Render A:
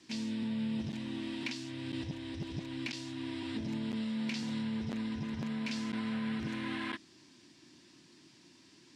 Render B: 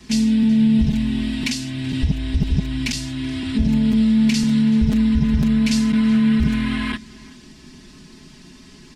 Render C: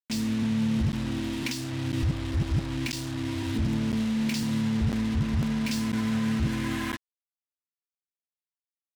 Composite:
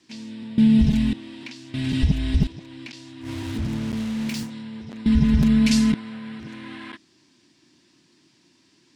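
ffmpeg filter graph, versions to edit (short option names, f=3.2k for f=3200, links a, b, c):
-filter_complex "[1:a]asplit=3[a][b][c];[0:a]asplit=5[d][e][f][g][h];[d]atrim=end=0.582[i];[a]atrim=start=0.578:end=1.132[j];[e]atrim=start=1.128:end=1.742[k];[b]atrim=start=1.738:end=2.472[l];[f]atrim=start=2.468:end=3.3[m];[2:a]atrim=start=3.2:end=4.51[n];[g]atrim=start=4.41:end=5.062[o];[c]atrim=start=5.058:end=5.942[p];[h]atrim=start=5.938[q];[i][j]acrossfade=d=0.004:c1=hsin:c2=hsin[r];[r][k]acrossfade=d=0.004:c1=hsin:c2=hsin[s];[s][l]acrossfade=d=0.004:c1=hsin:c2=hsin[t];[t][m]acrossfade=d=0.004:c1=hsin:c2=hsin[u];[u][n]acrossfade=d=0.1:c1=tri:c2=tri[v];[v][o]acrossfade=d=0.1:c1=tri:c2=tri[w];[w][p]acrossfade=d=0.004:c1=hsin:c2=hsin[x];[x][q]acrossfade=d=0.004:c1=hsin:c2=hsin"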